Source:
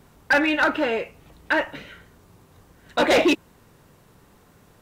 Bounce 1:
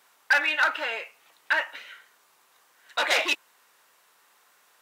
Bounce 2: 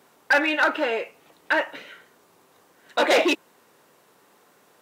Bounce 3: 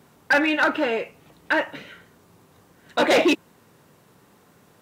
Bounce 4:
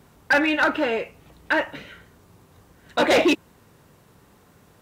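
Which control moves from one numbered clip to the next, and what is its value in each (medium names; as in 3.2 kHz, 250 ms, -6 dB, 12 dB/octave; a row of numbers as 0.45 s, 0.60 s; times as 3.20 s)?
high-pass, cutoff frequency: 1.1 kHz, 370 Hz, 130 Hz, 46 Hz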